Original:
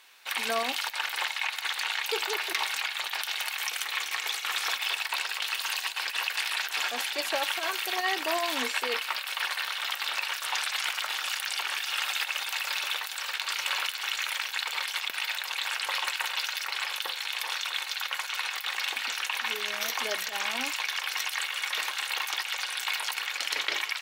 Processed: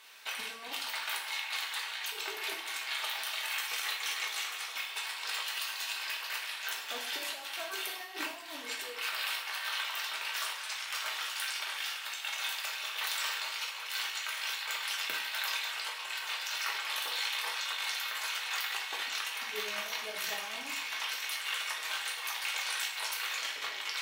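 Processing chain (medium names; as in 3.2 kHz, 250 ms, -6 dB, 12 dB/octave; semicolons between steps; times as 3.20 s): compressor with a negative ratio -35 dBFS, ratio -0.5; two-slope reverb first 0.51 s, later 2.2 s, DRR -2 dB; trim -5.5 dB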